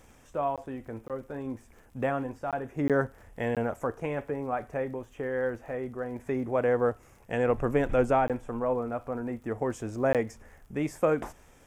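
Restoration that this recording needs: de-click; interpolate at 0.56/1.08/2.51/2.88/3.55/8.28/10.13, 17 ms

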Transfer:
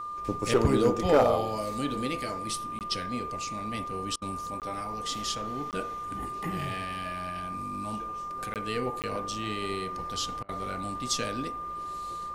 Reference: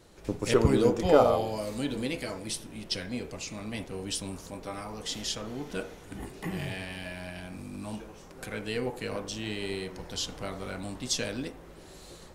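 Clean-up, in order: clip repair -14 dBFS; notch 1200 Hz, Q 30; interpolate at 2.79/4.6/5.71/8.54/9.02, 18 ms; interpolate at 4.16/10.43, 57 ms

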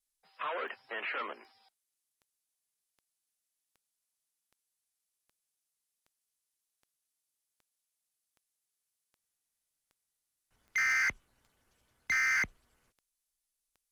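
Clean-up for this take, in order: clip repair -27 dBFS; de-click; expander -78 dBFS, range -21 dB

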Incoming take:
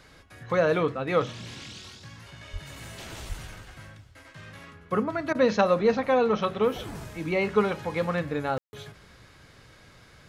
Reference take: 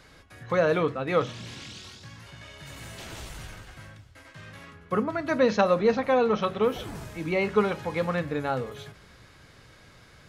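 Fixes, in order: 2.52–2.64 HPF 140 Hz 24 dB/oct; 3.28–3.4 HPF 140 Hz 24 dB/oct; room tone fill 8.58–8.73; interpolate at 5.33, 17 ms

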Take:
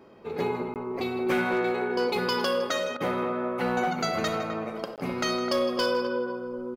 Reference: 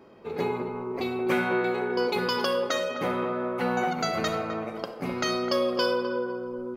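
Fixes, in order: clip repair -19 dBFS; interpolate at 0.74/4.96, 18 ms; interpolate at 2.97, 32 ms; inverse comb 0.159 s -14.5 dB

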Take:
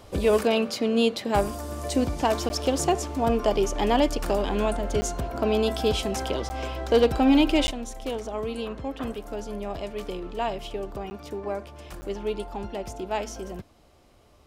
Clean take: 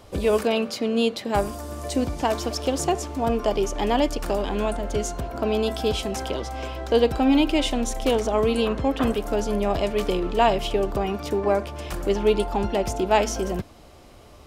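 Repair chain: clip repair -12 dBFS; interpolate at 2.49/5.01/6.49/7.67/11.1/12.01, 10 ms; gain 0 dB, from 7.71 s +9.5 dB

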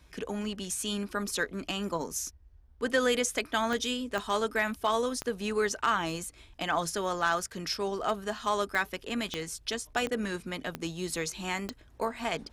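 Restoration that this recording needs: clip repair -17 dBFS; de-click; noise print and reduce 22 dB

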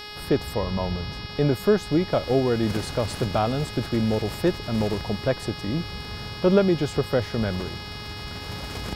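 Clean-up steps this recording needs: de-hum 417.8 Hz, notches 13; expander -28 dBFS, range -21 dB

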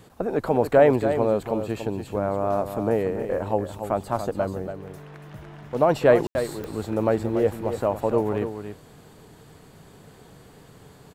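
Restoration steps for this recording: de-click; room tone fill 6.27–6.35; inverse comb 0.285 s -9 dB

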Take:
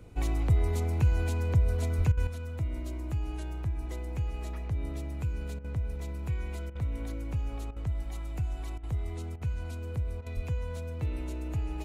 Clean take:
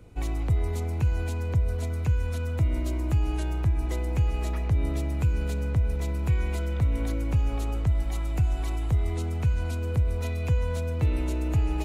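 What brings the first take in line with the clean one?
1.97–2.09 HPF 140 Hz 24 dB/oct; 10.35–10.47 HPF 140 Hz 24 dB/oct; interpolate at 2.12/5.59/6.7/7.71/8.78/9.36/10.21, 52 ms; gain 0 dB, from 2.27 s +8 dB

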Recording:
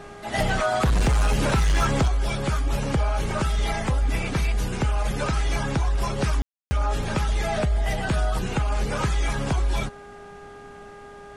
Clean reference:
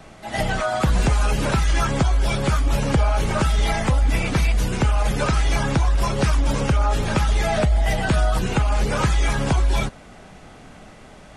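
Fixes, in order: clip repair -16 dBFS; de-hum 406.8 Hz, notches 4; room tone fill 6.42–6.71; gain 0 dB, from 2.08 s +4.5 dB

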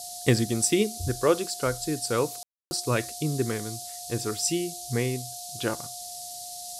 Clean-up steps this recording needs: notch 710 Hz, Q 30; room tone fill 2.43–2.71; noise print and reduce 30 dB

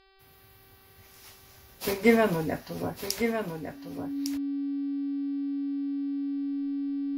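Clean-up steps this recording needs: de-hum 386.2 Hz, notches 13; notch 280 Hz, Q 30; inverse comb 1.155 s -7.5 dB

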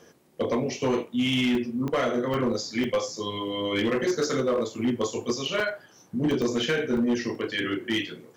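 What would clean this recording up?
clip repair -19 dBFS; de-click; interpolate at 1.55/2.34/2.84/5.6/6.31/6.97/7.35, 2.7 ms

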